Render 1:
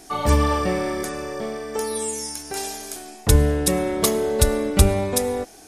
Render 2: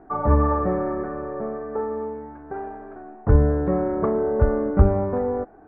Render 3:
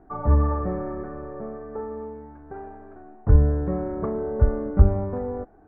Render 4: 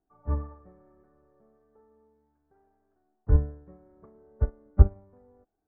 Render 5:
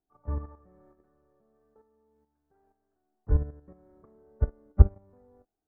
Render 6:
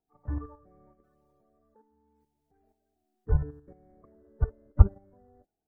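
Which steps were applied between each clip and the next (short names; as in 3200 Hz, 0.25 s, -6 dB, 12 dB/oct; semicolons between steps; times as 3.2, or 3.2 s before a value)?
steep low-pass 1500 Hz 36 dB/oct
low shelf 150 Hz +10 dB; gain -7 dB
upward expander 2.5:1, over -27 dBFS
level quantiser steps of 10 dB; gain +1.5 dB
bin magnitudes rounded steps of 30 dB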